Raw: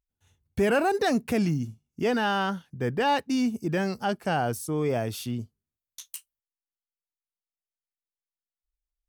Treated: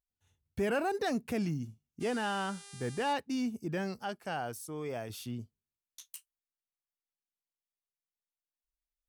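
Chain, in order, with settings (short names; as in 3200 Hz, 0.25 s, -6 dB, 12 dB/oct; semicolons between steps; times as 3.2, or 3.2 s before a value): 2–3.12 buzz 400 Hz, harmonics 27, -44 dBFS 0 dB/oct; 3.99–5.1 low shelf 440 Hz -7 dB; gain -8 dB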